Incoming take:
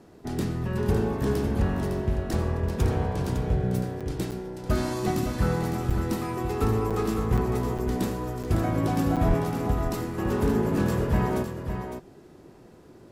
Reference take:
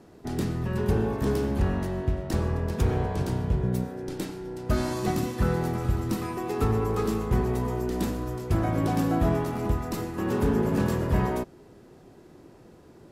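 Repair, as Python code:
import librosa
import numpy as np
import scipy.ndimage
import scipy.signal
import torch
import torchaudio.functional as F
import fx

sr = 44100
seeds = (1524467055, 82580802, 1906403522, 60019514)

y = fx.fix_declip(x, sr, threshold_db=-13.5)
y = fx.highpass(y, sr, hz=140.0, slope=24, at=(9.27, 9.39), fade=0.02)
y = fx.fix_interpolate(y, sr, at_s=(4.0, 4.31, 5.9, 6.9, 7.37, 7.78, 8.43, 9.16), length_ms=6.7)
y = fx.fix_echo_inverse(y, sr, delay_ms=557, level_db=-7.5)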